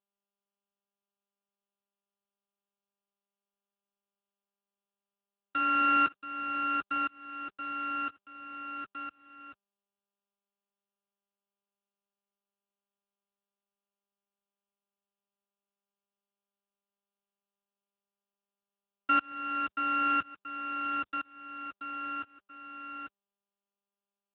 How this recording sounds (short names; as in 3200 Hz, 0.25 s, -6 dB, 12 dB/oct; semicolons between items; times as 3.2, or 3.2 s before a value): a buzz of ramps at a fixed pitch in blocks of 32 samples; tremolo saw up 0.99 Hz, depth 100%; a quantiser's noise floor 12-bit, dither none; AMR-NB